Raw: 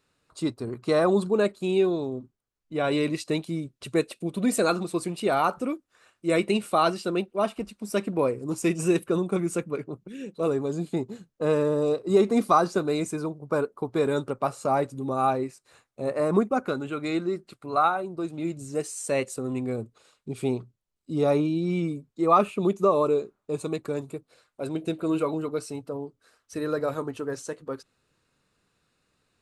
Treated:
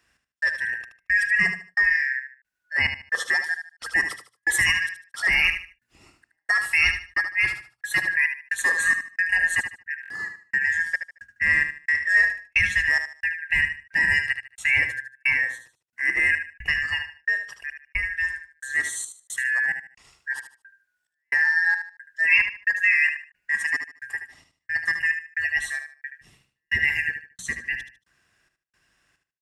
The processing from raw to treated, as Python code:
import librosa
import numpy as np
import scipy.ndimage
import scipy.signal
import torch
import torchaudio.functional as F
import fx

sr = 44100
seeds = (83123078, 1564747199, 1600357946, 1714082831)

p1 = fx.band_shuffle(x, sr, order='2143')
p2 = scipy.signal.sosfilt(scipy.signal.butter(2, 47.0, 'highpass', fs=sr, output='sos'), p1)
p3 = fx.low_shelf(p2, sr, hz=75.0, db=12.0)
p4 = fx.hum_notches(p3, sr, base_hz=60, count=4)
p5 = fx.over_compress(p4, sr, threshold_db=-25.0, ratio=-1.0)
p6 = p4 + (p5 * librosa.db_to_amplitude(-3.0))
p7 = fx.step_gate(p6, sr, bpm=178, pattern='xx...xxx', floor_db=-60.0, edge_ms=4.5)
p8 = p7 + fx.echo_feedback(p7, sr, ms=75, feedback_pct=27, wet_db=-8.5, dry=0)
p9 = fx.buffer_glitch(p8, sr, at_s=(10.01,), block=1024, repeats=3)
y = p9 * librosa.db_to_amplitude(-1.0)